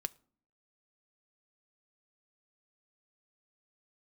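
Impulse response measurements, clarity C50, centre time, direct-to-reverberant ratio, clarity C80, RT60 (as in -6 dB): 25.0 dB, 2 ms, 13.5 dB, 29.0 dB, 0.50 s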